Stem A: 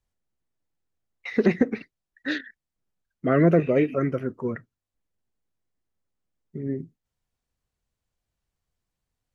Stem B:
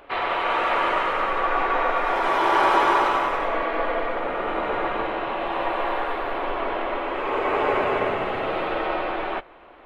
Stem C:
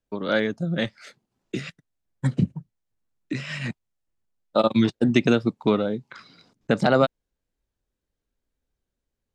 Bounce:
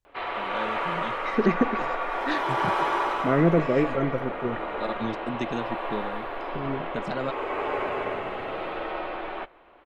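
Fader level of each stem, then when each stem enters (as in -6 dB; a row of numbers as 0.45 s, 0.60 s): -2.0 dB, -6.5 dB, -12.5 dB; 0.00 s, 0.05 s, 0.25 s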